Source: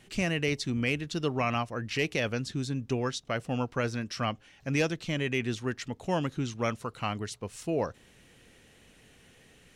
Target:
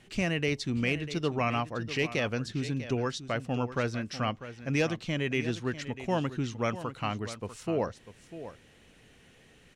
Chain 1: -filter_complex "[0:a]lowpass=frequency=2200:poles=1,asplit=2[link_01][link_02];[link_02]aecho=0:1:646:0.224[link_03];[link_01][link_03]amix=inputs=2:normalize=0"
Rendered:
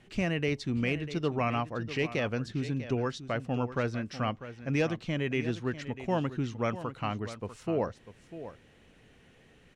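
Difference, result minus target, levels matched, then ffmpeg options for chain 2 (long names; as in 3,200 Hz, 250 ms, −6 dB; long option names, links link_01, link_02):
8,000 Hz band −5.5 dB
-filter_complex "[0:a]lowpass=frequency=6000:poles=1,asplit=2[link_01][link_02];[link_02]aecho=0:1:646:0.224[link_03];[link_01][link_03]amix=inputs=2:normalize=0"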